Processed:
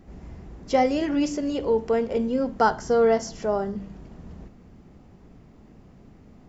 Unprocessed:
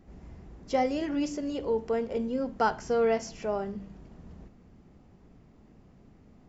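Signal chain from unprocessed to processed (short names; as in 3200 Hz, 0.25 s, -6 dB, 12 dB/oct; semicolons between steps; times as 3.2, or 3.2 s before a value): 2.6–3.76 bell 2500 Hz -12 dB 0.38 oct; gain +6 dB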